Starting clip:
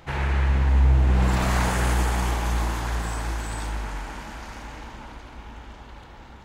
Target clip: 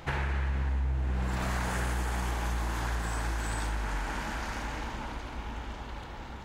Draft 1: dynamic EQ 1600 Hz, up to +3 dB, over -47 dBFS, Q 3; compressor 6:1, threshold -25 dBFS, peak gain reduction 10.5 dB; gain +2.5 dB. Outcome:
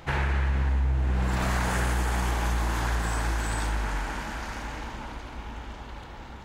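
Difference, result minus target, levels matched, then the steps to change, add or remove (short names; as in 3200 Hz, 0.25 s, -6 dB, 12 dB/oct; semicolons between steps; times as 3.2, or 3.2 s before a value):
compressor: peak gain reduction -5 dB
change: compressor 6:1, threshold -31 dBFS, peak gain reduction 15.5 dB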